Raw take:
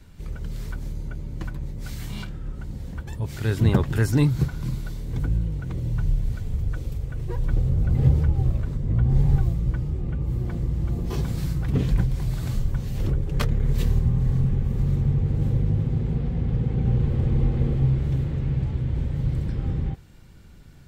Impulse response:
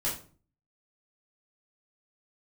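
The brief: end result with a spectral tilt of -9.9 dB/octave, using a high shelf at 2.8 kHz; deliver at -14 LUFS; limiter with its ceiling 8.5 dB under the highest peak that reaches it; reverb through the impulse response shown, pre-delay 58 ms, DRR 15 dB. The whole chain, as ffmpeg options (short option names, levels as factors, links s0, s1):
-filter_complex "[0:a]highshelf=f=2800:g=-7.5,alimiter=limit=0.168:level=0:latency=1,asplit=2[s0][s1];[1:a]atrim=start_sample=2205,adelay=58[s2];[s1][s2]afir=irnorm=-1:irlink=0,volume=0.0891[s3];[s0][s3]amix=inputs=2:normalize=0,volume=4.22"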